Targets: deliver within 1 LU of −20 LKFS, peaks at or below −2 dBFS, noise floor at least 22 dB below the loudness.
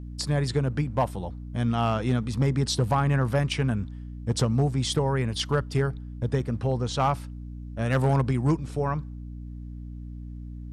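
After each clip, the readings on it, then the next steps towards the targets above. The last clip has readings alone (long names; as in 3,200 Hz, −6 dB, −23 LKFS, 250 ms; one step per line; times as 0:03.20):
share of clipped samples 0.4%; peaks flattened at −16.0 dBFS; mains hum 60 Hz; hum harmonics up to 300 Hz; level of the hum −35 dBFS; integrated loudness −26.5 LKFS; sample peak −16.0 dBFS; target loudness −20.0 LKFS
→ clipped peaks rebuilt −16 dBFS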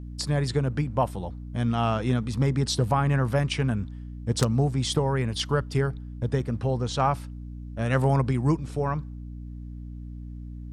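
share of clipped samples 0.0%; mains hum 60 Hz; hum harmonics up to 300 Hz; level of the hum −35 dBFS
→ mains-hum notches 60/120/180/240/300 Hz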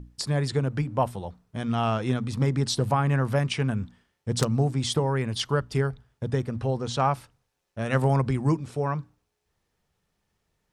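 mains hum none found; integrated loudness −26.5 LKFS; sample peak −7.5 dBFS; target loudness −20.0 LKFS
→ level +6.5 dB
brickwall limiter −2 dBFS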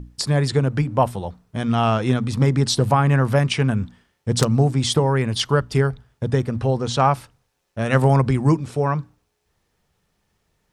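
integrated loudness −20.0 LKFS; sample peak −2.0 dBFS; background noise floor −72 dBFS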